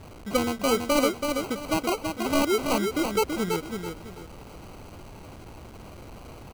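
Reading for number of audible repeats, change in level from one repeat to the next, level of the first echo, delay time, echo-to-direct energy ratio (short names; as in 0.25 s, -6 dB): 3, -10.0 dB, -5.0 dB, 0.33 s, -4.5 dB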